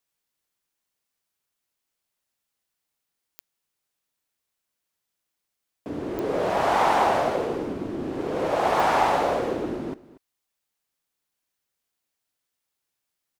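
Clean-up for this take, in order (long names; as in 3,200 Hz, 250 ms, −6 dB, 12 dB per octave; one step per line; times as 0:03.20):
click removal
echo removal 236 ms −19 dB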